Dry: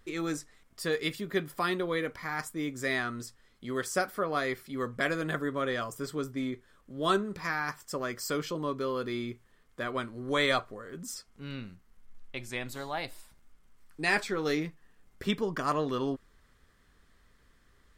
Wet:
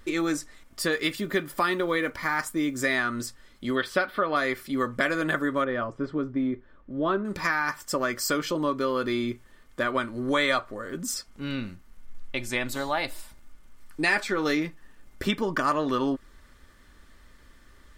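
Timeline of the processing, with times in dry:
0:00.96–0:02.80: one scale factor per block 7 bits
0:03.75–0:04.36: high shelf with overshoot 5,000 Hz −11 dB, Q 3
0:05.64–0:07.25: head-to-tape spacing loss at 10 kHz 40 dB
whole clip: dynamic equaliser 1,400 Hz, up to +4 dB, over −39 dBFS, Q 0.73; comb filter 3.4 ms, depth 36%; downward compressor 2.5 to 1, threshold −33 dBFS; level +8.5 dB

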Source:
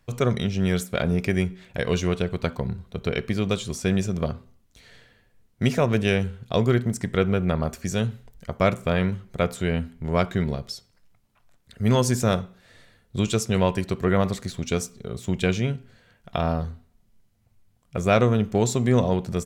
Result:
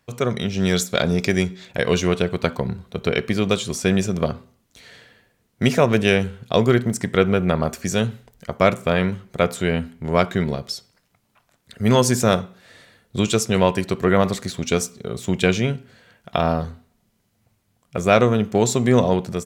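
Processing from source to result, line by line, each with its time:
0:00.58–0:01.71: gain on a spectral selection 3,300–7,800 Hz +7 dB
whole clip: high-pass filter 170 Hz 6 dB per octave; automatic gain control gain up to 5 dB; level +1.5 dB

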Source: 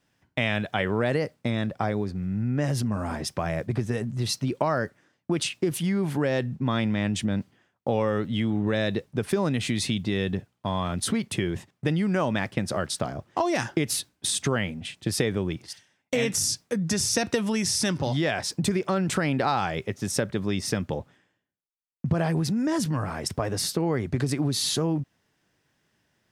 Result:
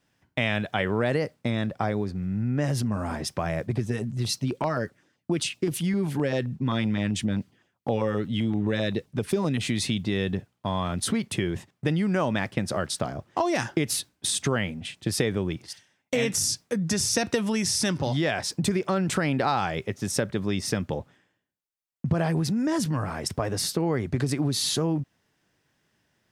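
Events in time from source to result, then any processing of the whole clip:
0:03.73–0:09.61: auto-filter notch saw down 7.7 Hz 430–2,200 Hz

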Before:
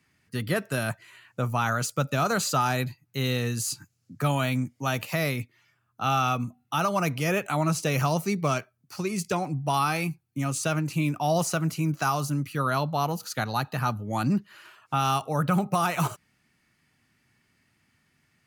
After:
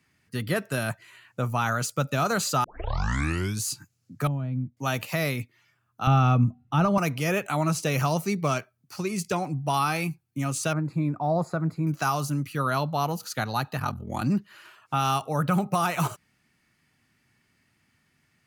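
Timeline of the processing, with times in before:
0:02.64: tape start 1.01 s
0:04.27–0:04.77: resonant band-pass 120 Hz, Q 0.85
0:06.07–0:06.98: RIAA equalisation playback
0:10.73–0:11.87: moving average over 15 samples
0:13.78–0:14.23: ring modulation 21 Hz

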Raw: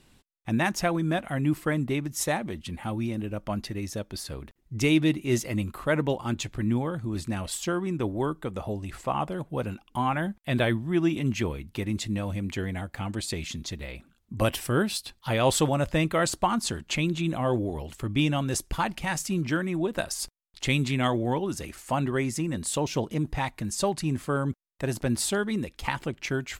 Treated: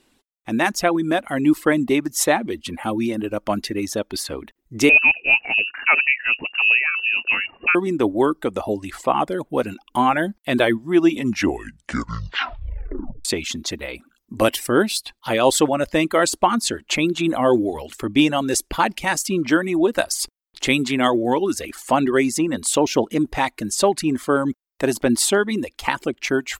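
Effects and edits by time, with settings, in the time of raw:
0:04.89–0:07.75: voice inversion scrambler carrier 2,800 Hz
0:11.12: tape stop 2.13 s
whole clip: reverb reduction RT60 0.5 s; low shelf with overshoot 200 Hz −9.5 dB, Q 1.5; automatic gain control gain up to 10 dB

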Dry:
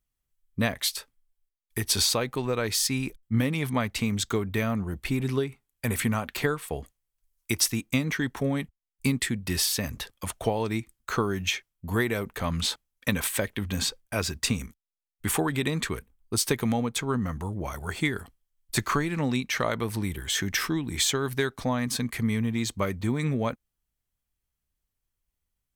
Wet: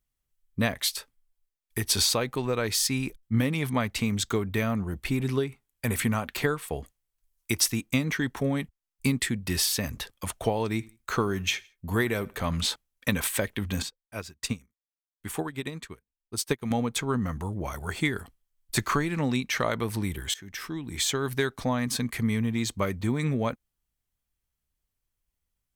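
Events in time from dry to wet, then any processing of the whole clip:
0:10.68–0:12.64: repeating echo 82 ms, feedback 34%, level −23.5 dB
0:13.82–0:16.71: expander for the loud parts 2.5 to 1, over −40 dBFS
0:20.34–0:21.30: fade in linear, from −22 dB

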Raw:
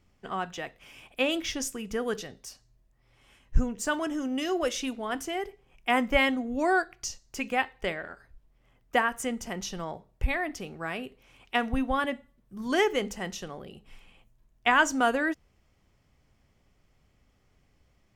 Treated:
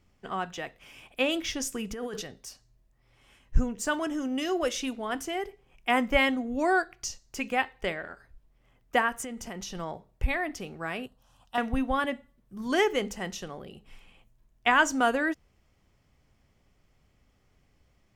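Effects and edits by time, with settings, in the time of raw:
0:01.72–0:02.22: compressor whose output falls as the input rises −34 dBFS
0:09.22–0:09.75: downward compressor, threshold −34 dBFS
0:11.06–0:11.58: phaser with its sweep stopped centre 930 Hz, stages 4

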